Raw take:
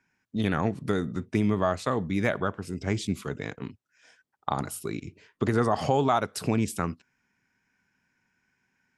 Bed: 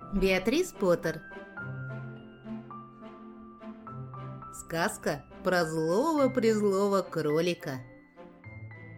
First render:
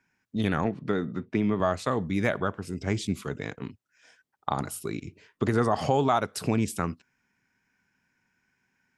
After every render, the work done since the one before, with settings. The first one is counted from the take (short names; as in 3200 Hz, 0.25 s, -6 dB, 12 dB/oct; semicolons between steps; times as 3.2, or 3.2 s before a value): 0.64–1.6 BPF 130–3500 Hz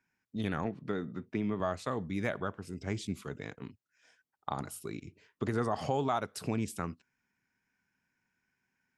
gain -7.5 dB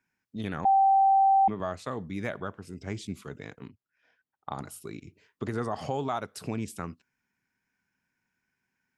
0.65–1.48 bleep 779 Hz -17.5 dBFS; 3.68–4.52 air absorption 270 m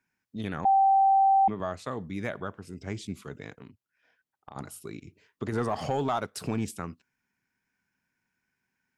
3.56–4.56 compressor, threshold -41 dBFS; 5.52–6.71 sample leveller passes 1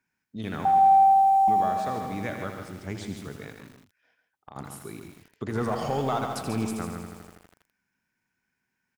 echo 0.139 s -8 dB; lo-fi delay 81 ms, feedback 80%, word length 8-bit, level -8.5 dB